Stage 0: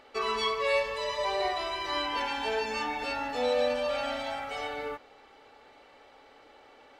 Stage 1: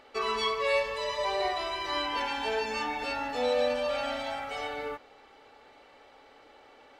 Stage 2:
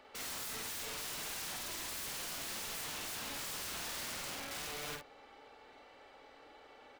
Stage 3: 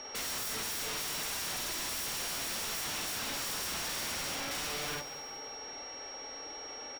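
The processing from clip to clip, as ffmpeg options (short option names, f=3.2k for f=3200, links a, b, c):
-af anull
-filter_complex "[0:a]acrossover=split=150|450|2000[a][b][c][d];[c]acompressor=threshold=-42dB:ratio=4[e];[a][b][e][d]amix=inputs=4:normalize=0,aeval=exprs='(mod(56.2*val(0)+1,2)-1)/56.2':c=same,asplit=2[f][g];[g]adelay=50,volume=-3.5dB[h];[f][h]amix=inputs=2:normalize=0,volume=-4dB"
-af "aeval=exprs='0.0188*sin(PI/2*2*val(0)/0.0188)':c=same,aeval=exprs='val(0)+0.00631*sin(2*PI*5600*n/s)':c=same,aecho=1:1:187|374|561|748:0.211|0.093|0.0409|0.018"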